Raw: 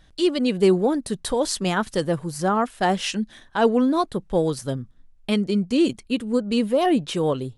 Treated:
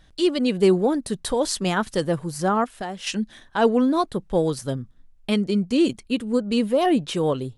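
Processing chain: 2.64–3.07 compressor 3:1, threshold -32 dBFS, peak gain reduction 12 dB

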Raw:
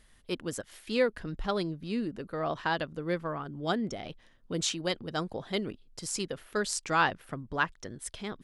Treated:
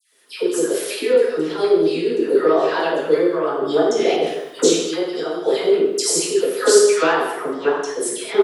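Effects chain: recorder AGC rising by 48 dB/s; resonant high-pass 400 Hz, resonance Q 4.9; high shelf 5100 Hz +6 dB; dispersion lows, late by 0.134 s, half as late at 1400 Hz; random-step tremolo 3.5 Hz; speakerphone echo 0.21 s, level -15 dB; non-linear reverb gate 0.26 s falling, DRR -5 dB

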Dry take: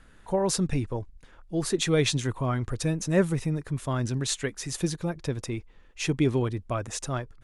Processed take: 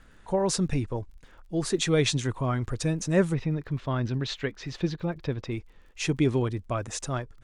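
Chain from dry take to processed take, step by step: LPF 9300 Hz 24 dB/oct, from 3.34 s 4400 Hz, from 5.51 s 9600 Hz; crackle 57/s -52 dBFS

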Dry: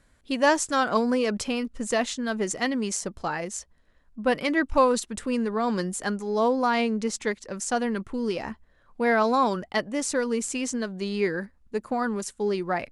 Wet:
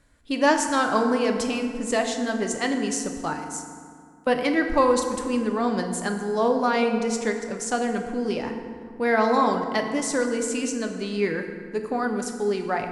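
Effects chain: 3.33–4.27 differentiator; FDN reverb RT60 2.1 s, low-frequency decay 1.3×, high-frequency decay 0.55×, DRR 4 dB

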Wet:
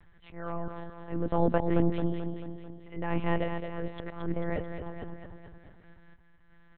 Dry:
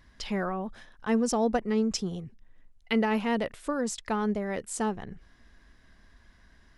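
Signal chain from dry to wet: auto swell 0.299 s; air absorption 280 m; feedback echo 0.22 s, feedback 54%, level -7 dB; monotone LPC vocoder at 8 kHz 170 Hz; gain +1.5 dB

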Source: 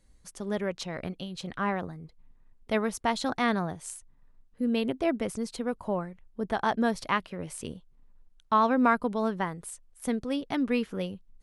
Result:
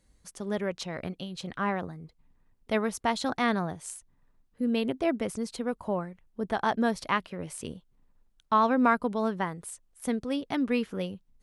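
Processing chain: HPF 41 Hz 6 dB/oct

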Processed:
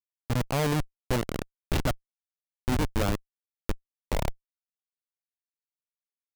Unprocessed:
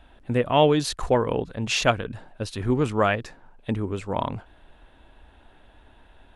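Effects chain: high-pass sweep 110 Hz -> 680 Hz, 1.55–4.61; Schmitt trigger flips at -17 dBFS

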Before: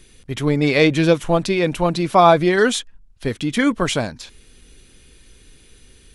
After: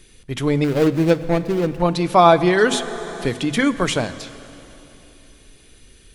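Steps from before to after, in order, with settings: 0.64–1.82 median filter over 41 samples; notches 50/100/150/200/250 Hz; plate-style reverb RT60 3.3 s, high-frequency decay 0.9×, DRR 13.5 dB; 2.73–3.96 three-band squash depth 40%

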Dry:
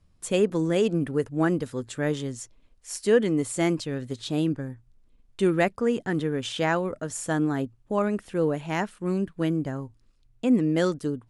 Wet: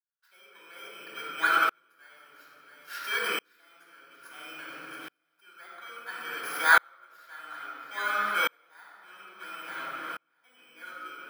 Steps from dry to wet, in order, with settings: FFT order left unsorted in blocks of 16 samples; high shelf 3900 Hz -10 dB; limiter -17 dBFS, peak gain reduction 7.5 dB; resonant high-pass 1400 Hz, resonance Q 14; swung echo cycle 0.899 s, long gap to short 3:1, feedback 60%, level -17 dB; reverb RT60 1.7 s, pre-delay 3 ms, DRR -7.5 dB; dB-ramp tremolo swelling 0.59 Hz, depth 39 dB

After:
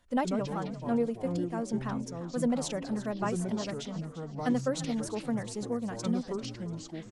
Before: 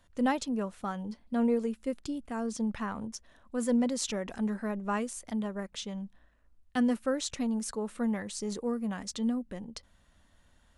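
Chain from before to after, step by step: dynamic EQ 650 Hz, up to +5 dB, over -45 dBFS, Q 2.2; time stretch by phase-locked vocoder 0.66×; echoes that change speed 83 ms, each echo -5 st, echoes 2, each echo -6 dB; on a send: frequency-shifting echo 0.344 s, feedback 40%, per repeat +40 Hz, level -15 dB; on the sum: gain -1.5 dB

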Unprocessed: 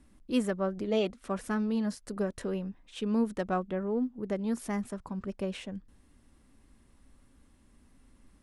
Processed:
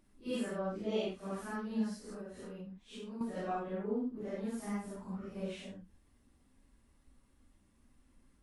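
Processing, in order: phase scrambler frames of 0.2 s; 2.13–3.21 compressor 4:1, threshold -38 dBFS, peak gain reduction 10.5 dB; gain -6 dB

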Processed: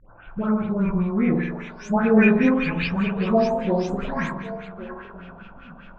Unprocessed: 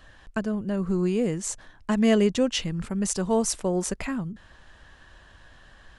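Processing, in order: spectral delay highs late, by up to 0.441 s; formant shift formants -3 st; delay with a stepping band-pass 0.37 s, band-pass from 3200 Hz, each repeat -1.4 oct, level -7 dB; spring tank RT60 1 s, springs 46 ms, chirp 70 ms, DRR 0 dB; LFO low-pass sine 5 Hz 810–2900 Hz; gain +2.5 dB

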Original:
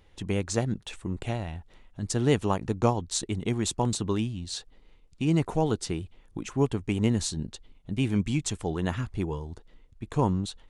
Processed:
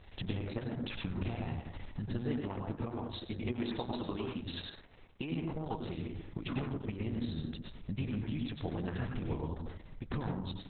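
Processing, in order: 3.4–5.32 tone controls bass -11 dB, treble -8 dB; compressor 12:1, threshold -39 dBFS, peak gain reduction 22 dB; vibrato 0.65 Hz 16 cents; on a send at -1 dB: reverb RT60 0.70 s, pre-delay 87 ms; on the sum: gain +5 dB; Opus 6 kbps 48000 Hz

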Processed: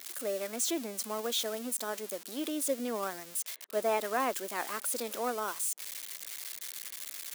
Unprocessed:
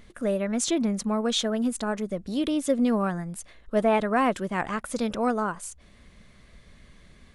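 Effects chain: switching spikes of -22 dBFS; HPF 300 Hz 24 dB/oct; gain -7 dB

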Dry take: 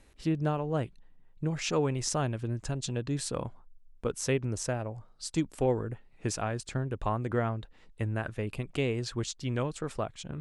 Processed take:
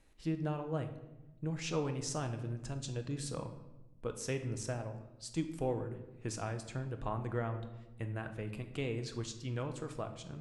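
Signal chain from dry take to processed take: shoebox room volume 450 m³, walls mixed, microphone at 0.61 m; gain -8 dB

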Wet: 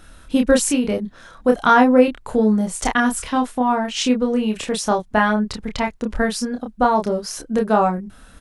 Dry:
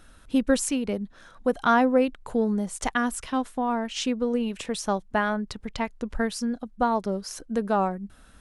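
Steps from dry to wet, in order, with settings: doubler 28 ms -3.5 dB; gain +6 dB

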